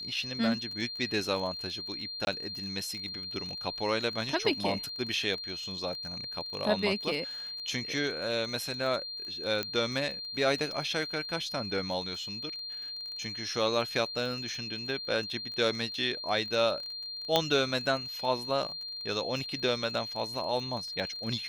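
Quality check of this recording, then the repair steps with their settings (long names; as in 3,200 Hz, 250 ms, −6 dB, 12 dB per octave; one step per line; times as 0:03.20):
surface crackle 24 per second −37 dBFS
whistle 4,200 Hz −37 dBFS
0:02.25–0:02.27: drop-out 21 ms
0:09.63: click −17 dBFS
0:17.36: click −9 dBFS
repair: click removal
notch filter 4,200 Hz, Q 30
repair the gap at 0:02.25, 21 ms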